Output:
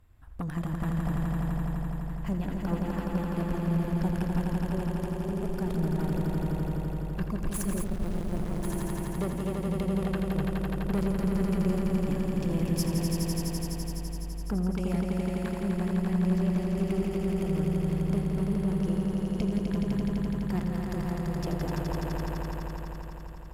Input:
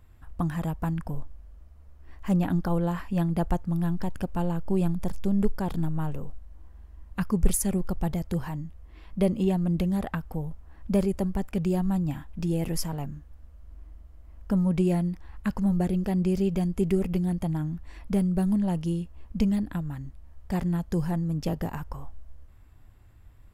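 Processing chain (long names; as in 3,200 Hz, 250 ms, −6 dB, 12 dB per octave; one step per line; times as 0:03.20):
0:14.70–0:15.61: low-shelf EQ 410 Hz −8.5 dB
speech leveller within 4 dB 0.5 s
tube saturation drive 23 dB, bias 0.75
echo that builds up and dies away 84 ms, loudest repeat 5, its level −4.5 dB
0:07.84–0:08.63: windowed peak hold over 65 samples
level −2 dB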